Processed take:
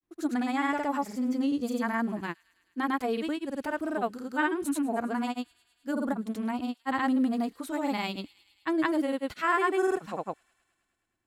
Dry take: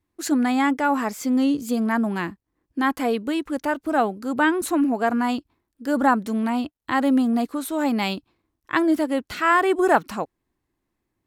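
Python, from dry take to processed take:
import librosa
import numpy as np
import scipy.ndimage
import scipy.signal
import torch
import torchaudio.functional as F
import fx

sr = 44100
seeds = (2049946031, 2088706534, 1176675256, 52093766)

p1 = fx.granulator(x, sr, seeds[0], grain_ms=100.0, per_s=20.0, spray_ms=100.0, spread_st=0)
p2 = p1 + fx.echo_wet_highpass(p1, sr, ms=105, feedback_pct=76, hz=3300.0, wet_db=-19.0, dry=0)
y = p2 * 10.0 ** (-6.5 / 20.0)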